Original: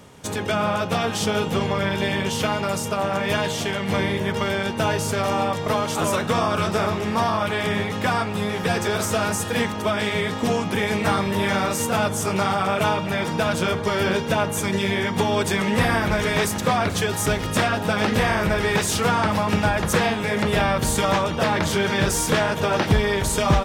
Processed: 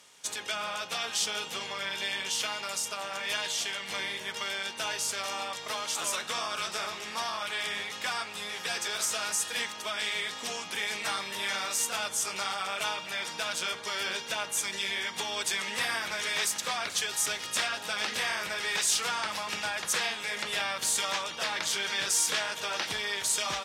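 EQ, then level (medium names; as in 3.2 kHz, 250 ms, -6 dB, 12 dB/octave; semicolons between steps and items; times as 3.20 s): band-pass filter 5.9 kHz, Q 0.65; 0.0 dB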